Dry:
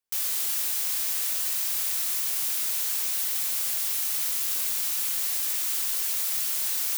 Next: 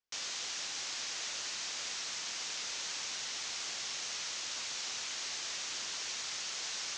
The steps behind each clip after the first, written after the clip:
Butterworth low-pass 6,700 Hz 48 dB per octave
level −2 dB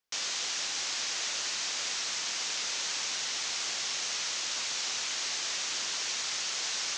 low-shelf EQ 120 Hz −6 dB
level +6 dB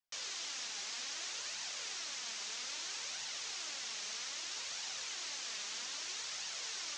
flanger 0.62 Hz, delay 1 ms, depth 4 ms, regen +45%
level −5 dB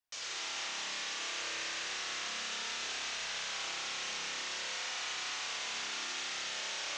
spring reverb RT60 3.5 s, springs 30 ms, chirp 55 ms, DRR −7 dB

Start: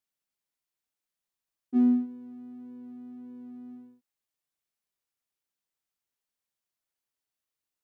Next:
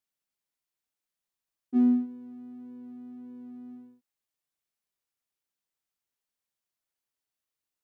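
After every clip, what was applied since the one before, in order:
no processing that can be heard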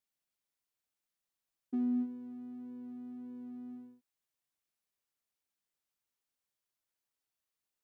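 brickwall limiter −26 dBFS, peak gain reduction 10 dB
level −1.5 dB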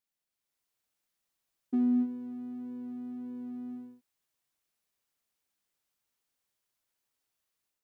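automatic gain control gain up to 6.5 dB
level −1 dB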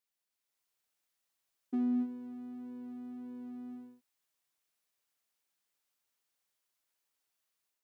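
low-shelf EQ 310 Hz −7.5 dB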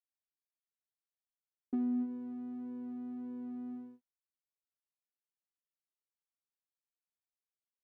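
noise gate with hold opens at −48 dBFS
downward compressor, threshold −33 dBFS, peak gain reduction 4.5 dB
low-pass filter 1,400 Hz 6 dB per octave
level +2.5 dB

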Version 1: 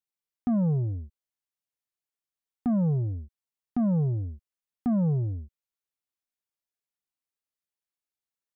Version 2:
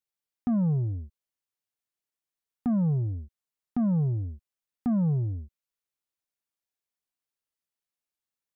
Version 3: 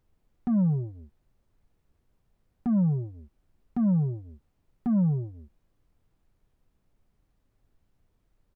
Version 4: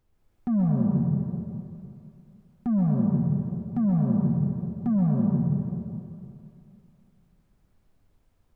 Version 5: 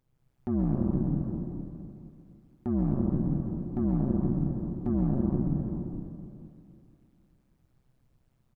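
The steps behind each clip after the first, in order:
dynamic equaliser 520 Hz, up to −6 dB, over −47 dBFS, Q 1.9
comb filter 5.2 ms, depth 71%; background noise brown −65 dBFS; level −2.5 dB
dense smooth reverb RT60 2.6 s, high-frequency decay 0.85×, pre-delay 115 ms, DRR −3 dB
amplitude modulation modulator 130 Hz, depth 95%; single-tap delay 466 ms −10 dB

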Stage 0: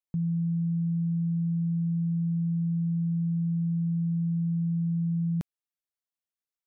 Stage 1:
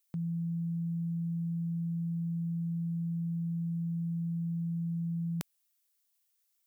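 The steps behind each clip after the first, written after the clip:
spectral tilt +4 dB per octave
level +4 dB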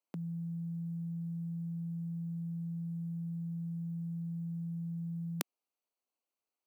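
adaptive Wiener filter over 25 samples
high-pass filter 230 Hz 24 dB per octave
level +6.5 dB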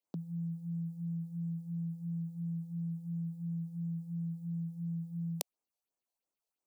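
all-pass phaser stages 4, 2.9 Hz, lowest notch 230–4,000 Hz
level +1 dB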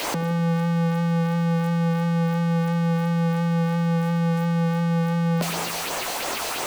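converter with a step at zero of −23 dBFS
mid-hump overdrive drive 30 dB, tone 2,100 Hz, clips at −4 dBFS
delay with a low-pass on its return 83 ms, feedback 63%, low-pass 470 Hz, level −9.5 dB
level −7 dB

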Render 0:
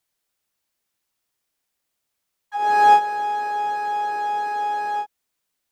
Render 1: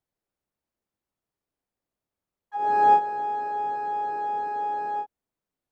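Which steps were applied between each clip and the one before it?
tilt shelving filter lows +9.5 dB, about 1,300 Hz
level −8 dB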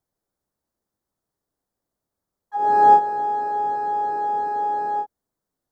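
parametric band 2,600 Hz −13.5 dB 0.68 octaves
level +5.5 dB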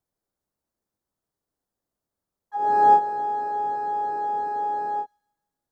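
delay with a high-pass on its return 157 ms, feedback 45%, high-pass 3,000 Hz, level −21 dB
level −3 dB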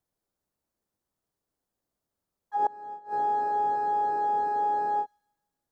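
gate with flip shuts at −16 dBFS, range −25 dB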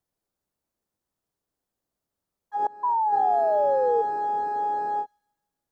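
sound drawn into the spectrogram fall, 0:02.83–0:04.02, 450–1,000 Hz −23 dBFS

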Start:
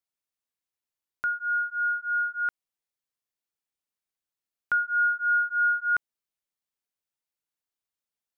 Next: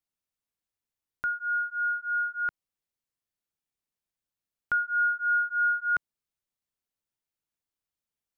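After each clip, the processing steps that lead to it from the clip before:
low-shelf EQ 270 Hz +9 dB
level −2 dB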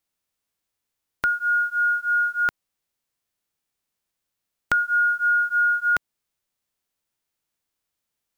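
spectral envelope flattened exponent 0.6
downward compressor, threshold −26 dBFS, peak gain reduction 4 dB
level +8.5 dB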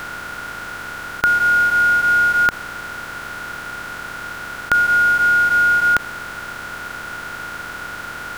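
compressor on every frequency bin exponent 0.2
level +4 dB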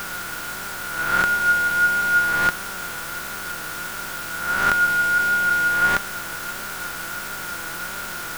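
peak hold with a rise ahead of every peak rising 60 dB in 1.45 s
flanger 1.5 Hz, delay 5 ms, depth 1.2 ms, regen +52%
background noise white −36 dBFS

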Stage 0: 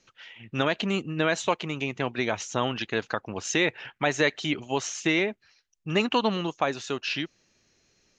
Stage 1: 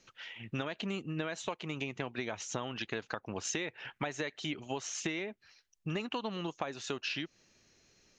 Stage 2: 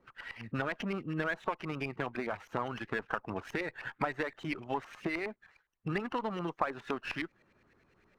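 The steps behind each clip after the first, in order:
downward compressor 10 to 1, threshold −33 dBFS, peak gain reduction 16 dB
spectral magnitudes quantised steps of 15 dB; auto-filter low-pass saw up 9.7 Hz 990–2,200 Hz; windowed peak hold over 3 samples; level +1.5 dB

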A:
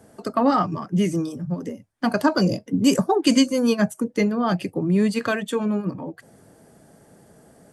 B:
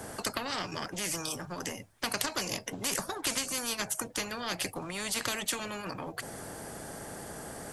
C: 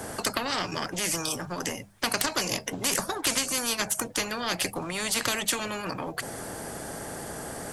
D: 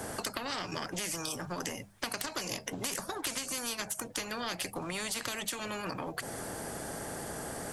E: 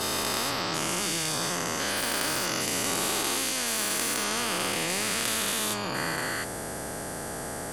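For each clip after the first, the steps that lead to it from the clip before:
downward compressor, threshold −20 dBFS, peak gain reduction 8.5 dB; every bin compressed towards the loudest bin 4 to 1
wavefolder on the positive side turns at −20.5 dBFS; mains-hum notches 50/100/150/200 Hz; level +5.5 dB
downward compressor, threshold −30 dBFS, peak gain reduction 8.5 dB; level −2.5 dB
every bin's largest magnitude spread in time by 480 ms; level −1 dB

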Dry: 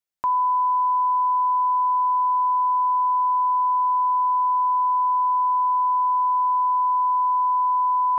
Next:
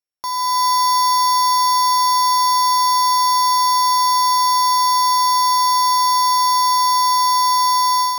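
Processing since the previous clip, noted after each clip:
samples sorted by size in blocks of 8 samples
automatic gain control gain up to 9 dB
level −4 dB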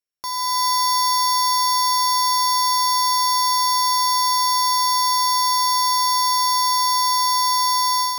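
parametric band 850 Hz −6 dB 0.94 octaves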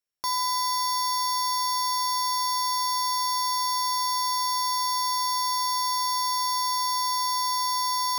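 brickwall limiter −19.5 dBFS, peak gain reduction 7.5 dB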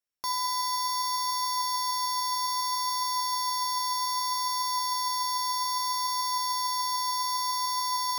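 flanger 0.63 Hz, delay 2.9 ms, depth 5.5 ms, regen +85%
level +1.5 dB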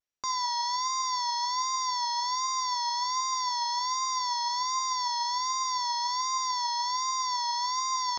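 downsampling to 16,000 Hz
pitch vibrato 1.3 Hz 76 cents

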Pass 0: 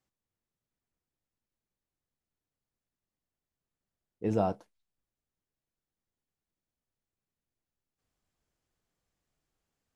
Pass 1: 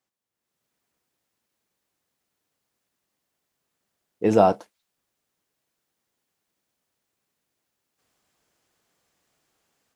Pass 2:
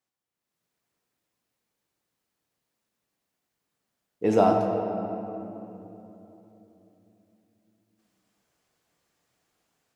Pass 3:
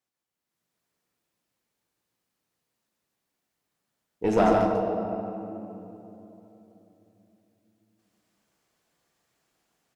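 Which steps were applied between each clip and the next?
high-pass filter 350 Hz 6 dB per octave; automatic gain control gain up to 11.5 dB; level +2.5 dB
rectangular room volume 170 cubic metres, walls hard, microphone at 0.37 metres; level −4 dB
tube saturation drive 14 dB, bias 0.6; on a send: single-tap delay 144 ms −4 dB; on the sum: level +2 dB

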